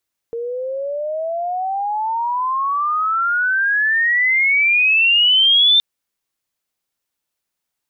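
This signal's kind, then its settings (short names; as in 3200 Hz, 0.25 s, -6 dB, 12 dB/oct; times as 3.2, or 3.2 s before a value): chirp logarithmic 460 Hz -> 3600 Hz -22 dBFS -> -9 dBFS 5.47 s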